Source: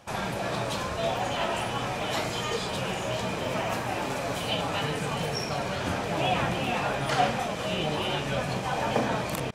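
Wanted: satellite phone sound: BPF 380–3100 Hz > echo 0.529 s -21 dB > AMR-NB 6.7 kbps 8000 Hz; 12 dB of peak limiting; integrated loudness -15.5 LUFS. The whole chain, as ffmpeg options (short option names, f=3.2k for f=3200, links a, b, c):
-af "alimiter=limit=-23.5dB:level=0:latency=1,highpass=380,lowpass=3.1k,aecho=1:1:529:0.0891,volume=22dB" -ar 8000 -c:a libopencore_amrnb -b:a 6700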